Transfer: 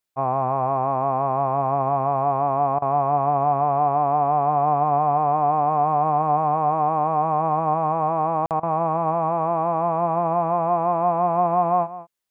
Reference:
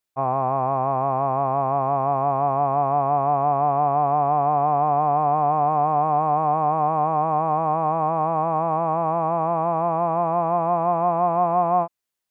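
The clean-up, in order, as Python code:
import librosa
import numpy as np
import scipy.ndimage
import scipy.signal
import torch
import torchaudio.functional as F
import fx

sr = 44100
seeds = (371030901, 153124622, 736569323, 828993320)

y = fx.fix_interpolate(x, sr, at_s=(8.46,), length_ms=48.0)
y = fx.fix_interpolate(y, sr, at_s=(2.79, 8.6), length_ms=29.0)
y = fx.fix_echo_inverse(y, sr, delay_ms=191, level_db=-15.5)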